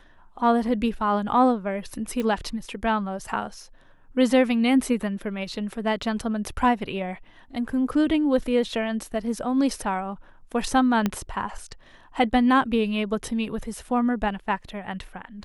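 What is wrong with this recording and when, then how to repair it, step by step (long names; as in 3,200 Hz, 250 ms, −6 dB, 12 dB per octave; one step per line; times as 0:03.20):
0:02.20: click −16 dBFS
0:11.06: click −10 dBFS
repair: click removal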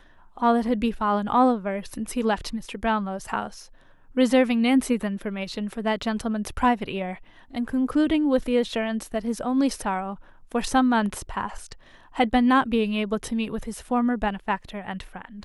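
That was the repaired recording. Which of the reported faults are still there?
0:11.06: click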